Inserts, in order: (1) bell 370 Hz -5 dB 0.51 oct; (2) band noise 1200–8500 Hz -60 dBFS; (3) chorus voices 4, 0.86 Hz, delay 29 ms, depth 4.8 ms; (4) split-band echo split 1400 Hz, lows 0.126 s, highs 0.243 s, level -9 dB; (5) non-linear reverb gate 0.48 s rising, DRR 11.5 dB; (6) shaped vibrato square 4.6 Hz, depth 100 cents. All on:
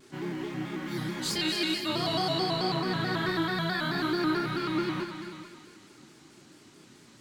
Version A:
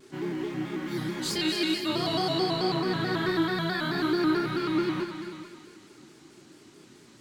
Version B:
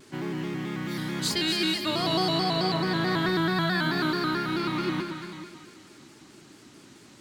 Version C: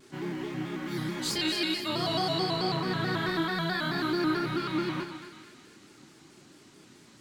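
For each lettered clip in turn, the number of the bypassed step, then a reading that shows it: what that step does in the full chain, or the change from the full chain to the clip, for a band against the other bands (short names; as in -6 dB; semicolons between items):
1, 500 Hz band +3.0 dB; 3, loudness change +3.0 LU; 5, momentary loudness spread change -1 LU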